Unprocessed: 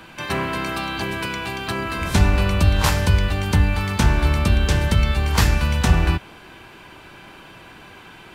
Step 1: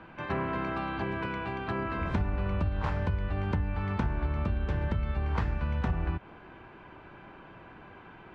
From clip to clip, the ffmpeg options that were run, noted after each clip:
ffmpeg -i in.wav -af "lowpass=1600,acompressor=threshold=-21dB:ratio=6,volume=-5dB" out.wav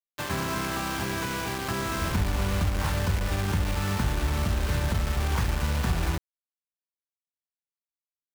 ffmpeg -i in.wav -filter_complex "[0:a]acrossover=split=230|1100[link_01][link_02][link_03];[link_02]alimiter=level_in=8.5dB:limit=-24dB:level=0:latency=1:release=97,volume=-8.5dB[link_04];[link_01][link_04][link_03]amix=inputs=3:normalize=0,acrusher=bits=5:mix=0:aa=0.000001,volume=3.5dB" out.wav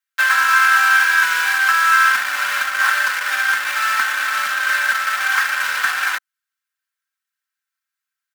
ffmpeg -i in.wav -af "highpass=frequency=1500:width_type=q:width=5.3,aecho=1:1:3.8:0.76,volume=8dB" out.wav

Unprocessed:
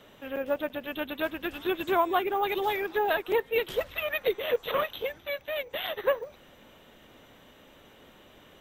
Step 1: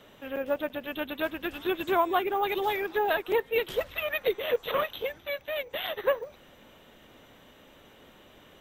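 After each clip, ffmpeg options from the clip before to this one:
ffmpeg -i in.wav -af anull out.wav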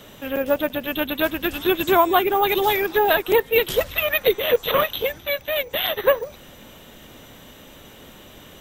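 ffmpeg -i in.wav -af "bass=frequency=250:gain=5,treble=frequency=4000:gain=9,volume=8dB" out.wav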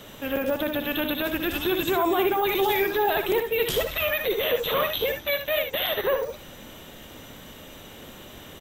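ffmpeg -i in.wav -filter_complex "[0:a]alimiter=limit=-16dB:level=0:latency=1:release=10,asplit=2[link_01][link_02];[link_02]aecho=0:1:62|75:0.376|0.316[link_03];[link_01][link_03]amix=inputs=2:normalize=0" out.wav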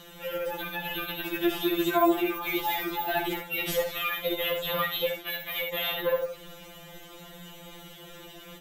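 ffmpeg -i in.wav -af "asoftclip=type=tanh:threshold=-13.5dB,afftfilt=real='re*2.83*eq(mod(b,8),0)':imag='im*2.83*eq(mod(b,8),0)':win_size=2048:overlap=0.75" out.wav

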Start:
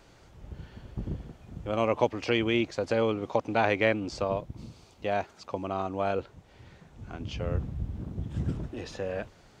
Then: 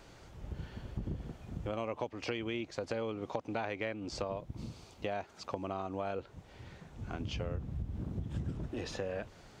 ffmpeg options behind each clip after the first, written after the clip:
ffmpeg -i in.wav -af "acompressor=threshold=-35dB:ratio=6,volume=1dB" out.wav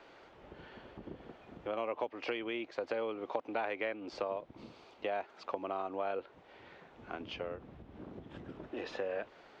ffmpeg -i in.wav -filter_complex "[0:a]acrossover=split=280 3900:gain=0.0891 1 0.0708[link_01][link_02][link_03];[link_01][link_02][link_03]amix=inputs=3:normalize=0,volume=2dB" out.wav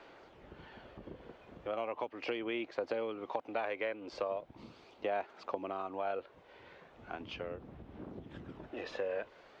ffmpeg -i in.wav -af "aphaser=in_gain=1:out_gain=1:delay=2:decay=0.26:speed=0.38:type=sinusoidal,volume=-1dB" out.wav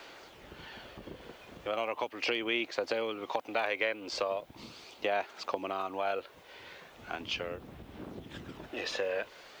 ffmpeg -i in.wav -af "crystalizer=i=6:c=0,volume=2dB" out.wav

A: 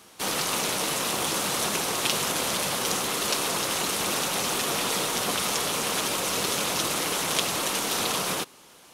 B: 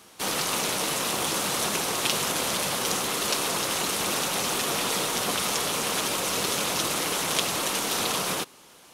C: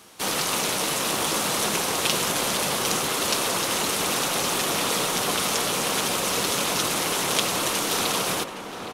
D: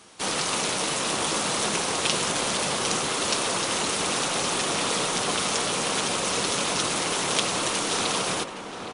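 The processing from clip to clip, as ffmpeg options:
ffmpeg -i in.wav -af anull out.wav
ffmpeg -i in.wav -filter_complex "[0:a]asplit=2[link_01][link_02];[link_02]adelay=816.3,volume=-6dB,highshelf=frequency=4000:gain=-18.4[link_03];[link_01][link_03]amix=inputs=2:normalize=0,volume=2dB" out.wav
ffmpeg -i in.wav -af "volume=-1dB" -ar 24000 -c:a mp2 -b:a 128k out.mp2

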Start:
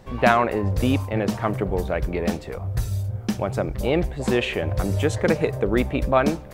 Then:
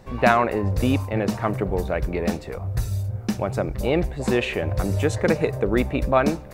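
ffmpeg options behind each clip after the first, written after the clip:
ffmpeg -i in.wav -af "bandreject=frequency=3200:width=11" out.wav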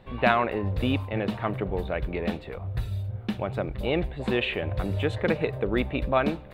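ffmpeg -i in.wav -af "highshelf=frequency=4500:width_type=q:width=3:gain=-9.5,volume=-5dB" out.wav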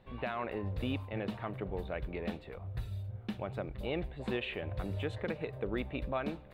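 ffmpeg -i in.wav -af "alimiter=limit=-15dB:level=0:latency=1:release=207,volume=-9dB" out.wav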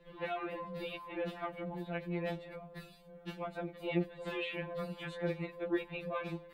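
ffmpeg -i in.wav -af "afftfilt=real='re*2.83*eq(mod(b,8),0)':imag='im*2.83*eq(mod(b,8),0)':win_size=2048:overlap=0.75,volume=2.5dB" out.wav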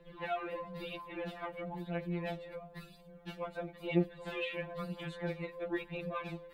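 ffmpeg -i in.wav -af "aphaser=in_gain=1:out_gain=1:delay=2.2:decay=0.41:speed=1:type=triangular,volume=-1dB" out.wav

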